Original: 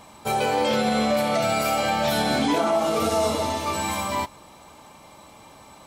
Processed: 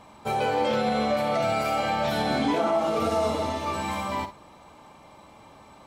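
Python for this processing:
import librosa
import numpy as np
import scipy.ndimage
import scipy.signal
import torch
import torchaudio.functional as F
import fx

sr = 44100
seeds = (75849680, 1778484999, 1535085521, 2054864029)

p1 = fx.high_shelf(x, sr, hz=4900.0, db=-12.0)
p2 = p1 + fx.room_early_taps(p1, sr, ms=(47, 57), db=(-15.0, -14.0), dry=0)
y = p2 * 10.0 ** (-2.0 / 20.0)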